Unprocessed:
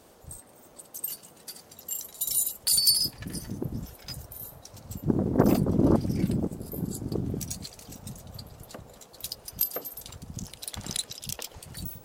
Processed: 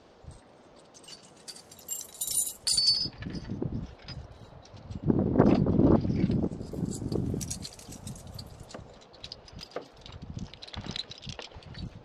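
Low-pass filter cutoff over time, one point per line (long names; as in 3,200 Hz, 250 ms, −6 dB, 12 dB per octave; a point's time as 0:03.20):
low-pass filter 24 dB per octave
0:01.00 5,200 Hz
0:01.66 11,000 Hz
0:02.58 11,000 Hz
0:03.07 4,400 Hz
0:06.12 4,400 Hz
0:07.16 11,000 Hz
0:08.47 11,000 Hz
0:09.10 4,400 Hz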